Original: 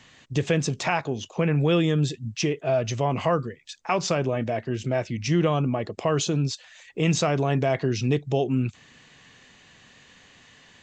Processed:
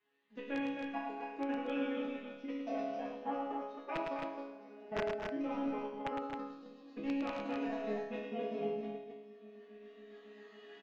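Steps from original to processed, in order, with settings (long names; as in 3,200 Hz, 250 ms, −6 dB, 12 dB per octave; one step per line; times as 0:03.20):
feedback delay that plays each chunk backwards 137 ms, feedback 77%, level −4.5 dB
camcorder AGC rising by 23 dB per second
high-pass filter 150 Hz 24 dB per octave
high-shelf EQ 5,000 Hz −10 dB
mains-hum notches 60/120/180/240/300 Hz
output level in coarse steps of 22 dB
phase-vocoder pitch shift with formants kept +9 semitones
resonators tuned to a chord C#3 minor, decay 0.73 s
wrap-around overflow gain 33 dB
high-frequency loss of the air 210 metres
loudspeakers that aren't time-aligned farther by 37 metres −5 dB, 80 metres −12 dB, 91 metres −5 dB
level +6.5 dB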